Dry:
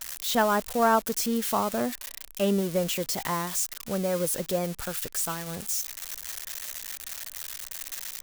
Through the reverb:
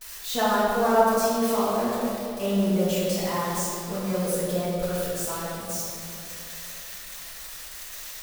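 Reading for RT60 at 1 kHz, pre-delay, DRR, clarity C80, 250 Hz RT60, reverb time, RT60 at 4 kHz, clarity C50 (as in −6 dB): 2.4 s, 4 ms, −12.0 dB, −1.0 dB, 2.9 s, 2.9 s, 1.5 s, −2.5 dB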